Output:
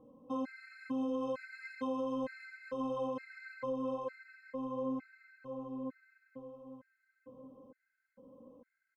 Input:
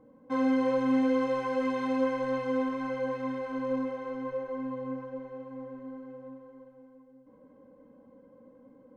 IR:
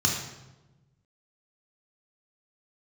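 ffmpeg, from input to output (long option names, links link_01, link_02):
-filter_complex "[0:a]asplit=2[link_01][link_02];[link_02]aecho=0:1:1136:0.398[link_03];[link_01][link_03]amix=inputs=2:normalize=0,alimiter=level_in=2.5dB:limit=-24dB:level=0:latency=1:release=168,volume=-2.5dB,afftfilt=real='re*gt(sin(2*PI*1.1*pts/sr)*(1-2*mod(floor(b*sr/1024/1300),2)),0)':imag='im*gt(sin(2*PI*1.1*pts/sr)*(1-2*mod(floor(b*sr/1024/1300),2)),0)':win_size=1024:overlap=0.75,volume=-2dB"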